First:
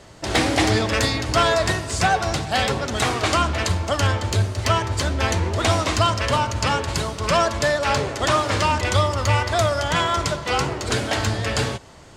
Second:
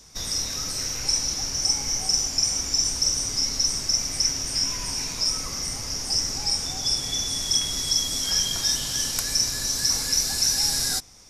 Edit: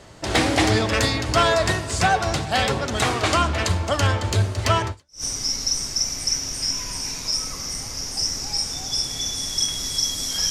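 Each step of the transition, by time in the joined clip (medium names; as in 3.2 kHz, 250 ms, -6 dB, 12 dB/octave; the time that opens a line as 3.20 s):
first
5.06 s: go over to second from 2.99 s, crossfade 0.34 s exponential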